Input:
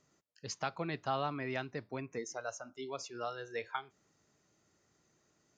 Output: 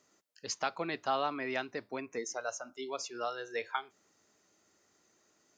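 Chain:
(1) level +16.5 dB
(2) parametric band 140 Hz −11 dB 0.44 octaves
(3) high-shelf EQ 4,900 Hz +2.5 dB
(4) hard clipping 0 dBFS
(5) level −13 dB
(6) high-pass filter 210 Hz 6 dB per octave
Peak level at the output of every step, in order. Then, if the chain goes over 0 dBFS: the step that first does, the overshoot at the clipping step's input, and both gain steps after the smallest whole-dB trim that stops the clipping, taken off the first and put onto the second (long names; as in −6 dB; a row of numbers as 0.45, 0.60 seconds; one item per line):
−4.5, −5.0, −5.0, −5.0, −18.0, −18.5 dBFS
no step passes full scale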